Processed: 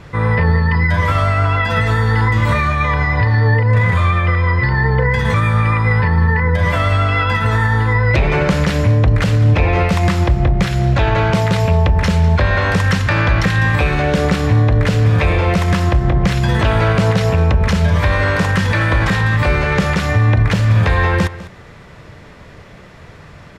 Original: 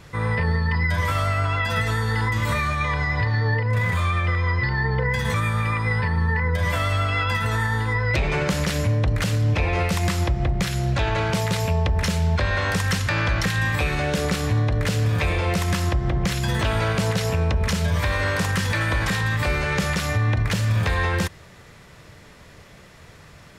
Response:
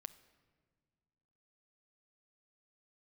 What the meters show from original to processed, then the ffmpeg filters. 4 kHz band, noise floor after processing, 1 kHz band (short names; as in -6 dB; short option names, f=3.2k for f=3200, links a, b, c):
+3.0 dB, -39 dBFS, +8.0 dB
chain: -af "lowpass=f=2.3k:p=1,aecho=1:1:201:0.15,volume=8.5dB"